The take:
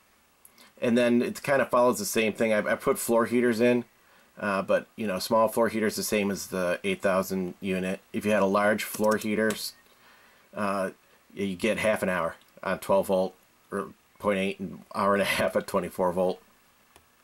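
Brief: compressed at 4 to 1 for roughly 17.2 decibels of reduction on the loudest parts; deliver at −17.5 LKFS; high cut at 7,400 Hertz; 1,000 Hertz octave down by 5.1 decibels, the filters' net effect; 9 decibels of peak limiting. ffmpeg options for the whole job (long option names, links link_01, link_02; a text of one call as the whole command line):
ffmpeg -i in.wav -af "lowpass=7400,equalizer=frequency=1000:width_type=o:gain=-6,acompressor=threshold=-42dB:ratio=4,volume=28.5dB,alimiter=limit=-7dB:level=0:latency=1" out.wav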